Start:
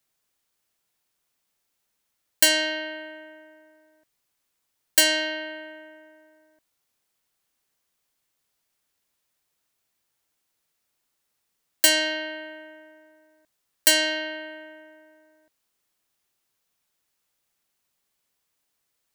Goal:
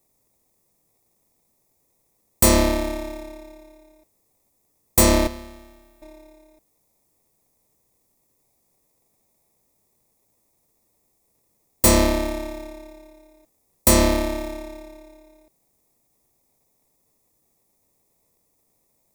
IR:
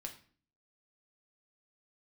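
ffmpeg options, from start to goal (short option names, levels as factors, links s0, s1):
-filter_complex "[0:a]asettb=1/sr,asplit=3[s0][s1][s2];[s0]atrim=end=5.274[s3];[s1]atrim=start=5.27:end=6.02,asetpts=PTS-STARTPTS,afade=t=in:d=0.004:c=qsin,afade=t=out:st=0.746:d=0.004:c=qsin,aderivative[s4];[s2]atrim=start=6.016[s5];[s3][s4]acrossfade=d=0.004:c1=hsin:c2=qsin[s6];[s6][s5]acrossfade=d=0.004:c1=qsin:c2=hsin,apsyclip=7.5,acrossover=split=750|5400[s7][s8][s9];[s8]acrusher=samples=29:mix=1:aa=0.000001[s10];[s7][s10][s9]amix=inputs=3:normalize=0,volume=0.376"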